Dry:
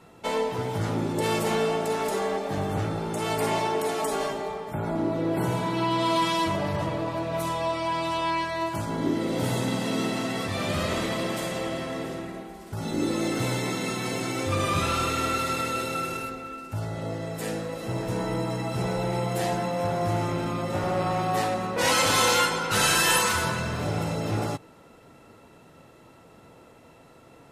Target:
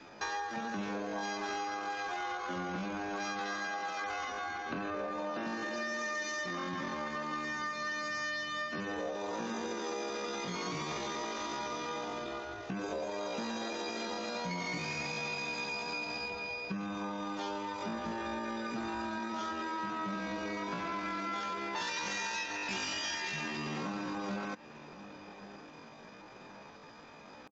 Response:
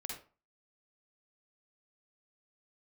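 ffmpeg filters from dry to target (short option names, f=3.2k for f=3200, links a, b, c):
-filter_complex "[0:a]aresample=8000,aresample=44100,adynamicequalizer=threshold=0.00631:dfrequency=340:dqfactor=6.6:tfrequency=340:tqfactor=6.6:attack=5:release=100:ratio=0.375:range=1.5:mode=cutabove:tftype=bell,asetrate=80880,aresample=44100,atempo=0.545254,asplit=2[a][b];[b]adelay=1107,lowpass=f=1.1k:p=1,volume=-24dB,asplit=2[c][d];[d]adelay=1107,lowpass=f=1.1k:p=1,volume=0.48,asplit=2[e][f];[f]adelay=1107,lowpass=f=1.1k:p=1,volume=0.48[g];[a][c][e][g]amix=inputs=4:normalize=0,acompressor=threshold=-35dB:ratio=6"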